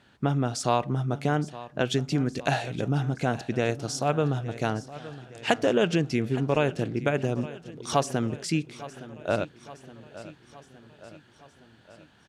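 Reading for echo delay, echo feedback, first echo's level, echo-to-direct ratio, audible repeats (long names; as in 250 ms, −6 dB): 866 ms, 58%, −16.5 dB, −14.5 dB, 4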